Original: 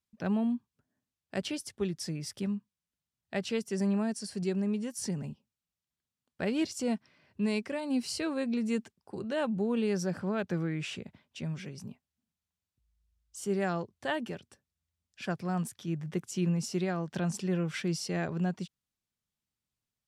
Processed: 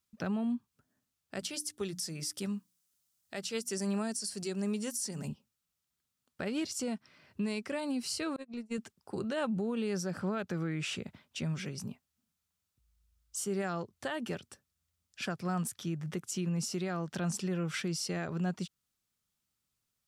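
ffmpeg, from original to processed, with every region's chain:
ffmpeg -i in.wav -filter_complex "[0:a]asettb=1/sr,asplit=3[link_01][link_02][link_03];[link_01]atrim=end=1.394[link_04];[link_02]atrim=start=1.39:end=5.28,asetpts=PTS-STARTPTS,afade=type=in:duration=0.004:curve=qsin,afade=type=out:start_time=3.886:duration=0.004:curve=qsin,bass=frequency=250:gain=-4,treble=frequency=4000:gain=9,bandreject=frequency=60:width_type=h:width=6,bandreject=frequency=120:width_type=h:width=6,bandreject=frequency=180:width_type=h:width=6,bandreject=frequency=240:width_type=h:width=6,bandreject=frequency=300:width_type=h:width=6[link_05];[link_03]atrim=start=5.276[link_06];[link_04][link_05]acrossfade=duration=0.004:curve1=hsin:curve2=qsin[link_07];[link_07][link_06]acrossfade=duration=0.004:curve1=qsin:curve2=hsin,asettb=1/sr,asplit=3[link_08][link_09][link_10];[link_08]atrim=end=8.364[link_11];[link_09]atrim=start=8.36:end=8.78,asetpts=PTS-STARTPTS,afade=type=in:duration=0.004:curve=qsin,afade=type=out:start_time=0.416:duration=0.004:curve=qsin,asuperstop=centerf=790:order=8:qfactor=2.2,agate=range=-38dB:threshold=-29dB:ratio=16:release=100:detection=peak[link_12];[link_10]atrim=start=8.776[link_13];[link_11][link_12]acrossfade=duration=0.004:curve1=hsin:curve2=qsin[link_14];[link_14][link_13]acrossfade=duration=0.004:curve1=qsin:curve2=hsin,highshelf=frequency=4100:gain=6,alimiter=level_in=5dB:limit=-24dB:level=0:latency=1:release=240,volume=-5dB,equalizer=frequency=1300:width_type=o:width=0.25:gain=6,volume=2.5dB" out.wav

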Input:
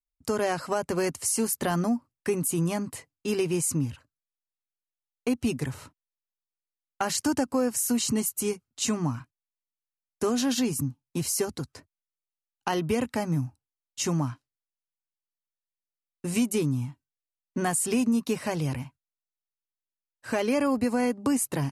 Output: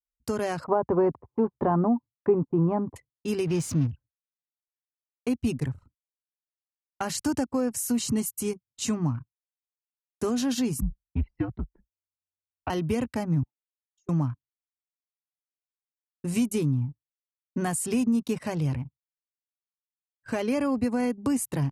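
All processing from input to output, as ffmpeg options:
ffmpeg -i in.wav -filter_complex "[0:a]asettb=1/sr,asplit=3[link_01][link_02][link_03];[link_01]atrim=end=0.644[link_04];[link_02]atrim=start=0.64:end=2.96,asetpts=PTS-STARTPTS,afade=type=in:duration=0.004:curve=qsin,afade=type=out:start_time=2.316:duration=0.004:curve=qsin,lowpass=frequency=960:width_type=q:width=2.7,equalizer=frequency=390:width_type=o:width=0.78:gain=6[link_05];[link_03]atrim=start=2.956[link_06];[link_04][link_05]acrossfade=duration=0.004:curve1=hsin:curve2=qsin[link_07];[link_07][link_06]acrossfade=duration=0.004:curve1=qsin:curve2=hsin,asettb=1/sr,asplit=3[link_08][link_09][link_10];[link_08]atrim=end=3.474[link_11];[link_09]atrim=start=3.47:end=3.87,asetpts=PTS-STARTPTS,afade=type=in:duration=0.004:curve=qsin,afade=type=out:start_time=0.396:duration=0.004:curve=qsin,aeval=exprs='val(0)+0.5*0.0211*sgn(val(0))':channel_layout=same,highshelf=frequency=7000:width_type=q:width=1.5:gain=-8.5[link_12];[link_10]atrim=start=3.866[link_13];[link_11][link_12]acrossfade=duration=0.004:curve1=hsin:curve2=qsin[link_14];[link_14][link_13]acrossfade=duration=0.004:curve1=qsin:curve2=hsin,asettb=1/sr,asplit=3[link_15][link_16][link_17];[link_15]atrim=end=10.814[link_18];[link_16]atrim=start=10.81:end=12.7,asetpts=PTS-STARTPTS,afade=type=in:duration=0.004:curve=qsin,afade=type=out:start_time=1.886:duration=0.004:curve=qsin,lowpass=frequency=2800:width=0.5412,lowpass=frequency=2800:width=1.3066,afreqshift=-91[link_19];[link_17]atrim=start=12.696[link_20];[link_18][link_19]acrossfade=duration=0.004:curve1=hsin:curve2=qsin[link_21];[link_21][link_20]acrossfade=duration=0.004:curve1=qsin:curve2=hsin,asettb=1/sr,asplit=3[link_22][link_23][link_24];[link_22]atrim=end=13.434[link_25];[link_23]atrim=start=13.43:end=14.09,asetpts=PTS-STARTPTS,afade=type=in:duration=0.004:curve=qsin,afade=type=out:start_time=0.656:duration=0.004:curve=qsin,highpass=frequency=410:width=0.5412,highpass=frequency=410:width=1.3066,acompressor=threshold=-45dB:ratio=12:attack=3.2:release=140:knee=1:detection=peak[link_26];[link_24]atrim=start=14.086[link_27];[link_25][link_26]acrossfade=duration=0.004:curve1=hsin:curve2=qsin[link_28];[link_28][link_27]acrossfade=duration=0.004:curve1=qsin:curve2=hsin,highpass=55,anlmdn=0.631,lowshelf=frequency=170:gain=11,volume=-3.5dB" out.wav

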